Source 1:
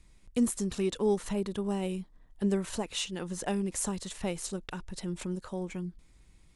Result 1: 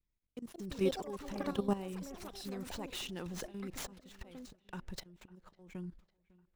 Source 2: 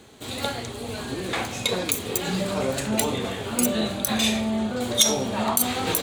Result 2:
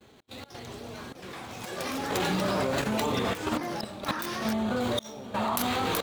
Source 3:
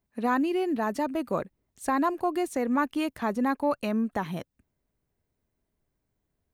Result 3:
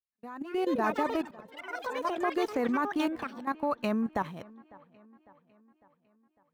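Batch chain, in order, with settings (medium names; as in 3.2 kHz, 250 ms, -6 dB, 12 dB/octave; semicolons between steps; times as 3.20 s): median filter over 5 samples; slow attack 541 ms; dynamic bell 1.1 kHz, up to +5 dB, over -44 dBFS, Q 1.8; in parallel at -2.5 dB: compression 6:1, threshold -38 dBFS; on the sum: gate -47 dBFS, range -30 dB; level held to a coarse grid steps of 14 dB; feedback echo behind a low-pass 552 ms, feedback 52%, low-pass 2.8 kHz, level -23 dB; ever faster or slower copies 282 ms, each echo +6 st, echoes 3, each echo -6 dB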